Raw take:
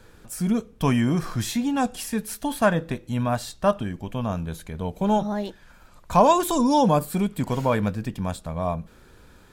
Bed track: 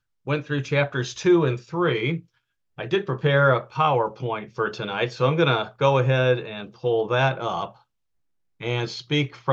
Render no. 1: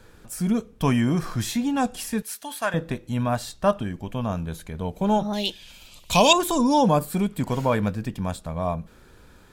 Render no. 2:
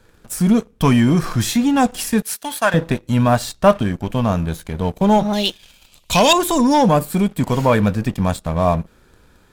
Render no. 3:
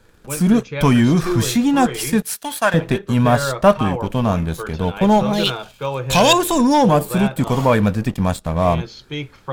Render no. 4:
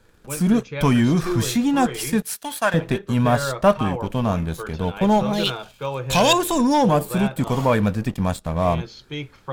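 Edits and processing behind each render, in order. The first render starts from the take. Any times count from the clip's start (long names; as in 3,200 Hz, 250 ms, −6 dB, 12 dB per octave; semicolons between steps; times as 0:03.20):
0:02.22–0:02.74: high-pass filter 1,400 Hz 6 dB per octave; 0:05.33–0:06.33: high shelf with overshoot 2,100 Hz +11.5 dB, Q 3
leveller curve on the samples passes 2; speech leveller within 3 dB 2 s
mix in bed track −5 dB
level −3.5 dB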